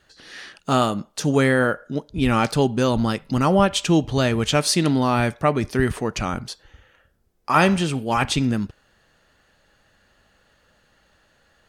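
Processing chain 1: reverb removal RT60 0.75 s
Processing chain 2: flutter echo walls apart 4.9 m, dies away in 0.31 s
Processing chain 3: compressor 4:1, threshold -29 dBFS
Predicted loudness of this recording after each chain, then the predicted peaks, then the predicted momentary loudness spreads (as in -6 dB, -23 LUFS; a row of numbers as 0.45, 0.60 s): -22.0, -19.5, -32.0 LUFS; -4.0, -2.5, -15.5 dBFS; 12, 11, 7 LU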